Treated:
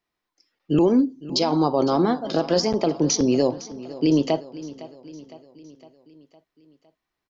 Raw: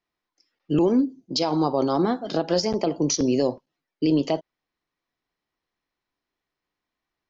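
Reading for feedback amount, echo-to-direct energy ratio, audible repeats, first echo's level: 55%, −15.5 dB, 4, −17.0 dB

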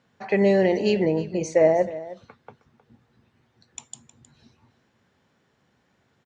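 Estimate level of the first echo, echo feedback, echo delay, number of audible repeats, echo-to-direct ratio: −16.5 dB, repeats not evenly spaced, 313 ms, 1, −16.5 dB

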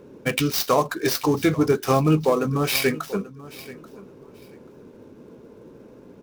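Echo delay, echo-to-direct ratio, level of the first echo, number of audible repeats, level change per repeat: 835 ms, −18.5 dB, −18.5 dB, 2, −14.5 dB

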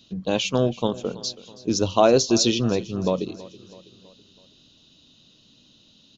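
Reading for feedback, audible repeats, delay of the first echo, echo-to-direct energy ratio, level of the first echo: 52%, 3, 326 ms, −17.5 dB, −19.0 dB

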